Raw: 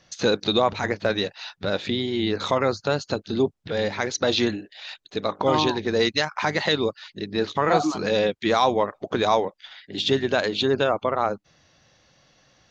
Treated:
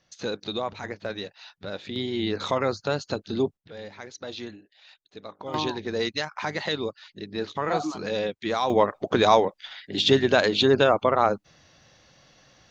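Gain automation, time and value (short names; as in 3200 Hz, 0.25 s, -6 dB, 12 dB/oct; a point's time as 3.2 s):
-9.5 dB
from 1.96 s -3 dB
from 3.57 s -15 dB
from 5.54 s -6 dB
from 8.7 s +2.5 dB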